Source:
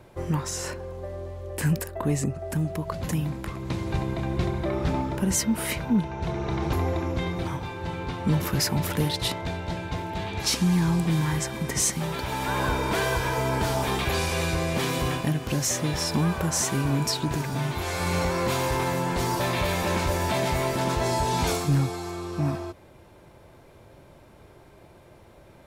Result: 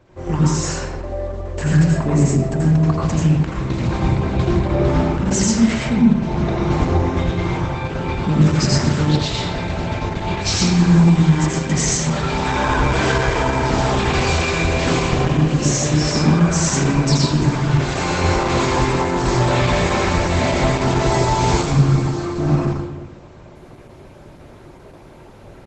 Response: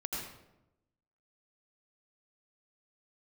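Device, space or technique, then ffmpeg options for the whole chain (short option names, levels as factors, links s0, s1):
speakerphone in a meeting room: -filter_complex "[1:a]atrim=start_sample=2205[s0];[0:a][s0]afir=irnorm=-1:irlink=0,asplit=2[s1][s2];[s2]adelay=160,highpass=300,lowpass=3400,asoftclip=type=hard:threshold=0.158,volume=0.224[s3];[s1][s3]amix=inputs=2:normalize=0,dynaudnorm=f=140:g=3:m=2.24" -ar 48000 -c:a libopus -b:a 12k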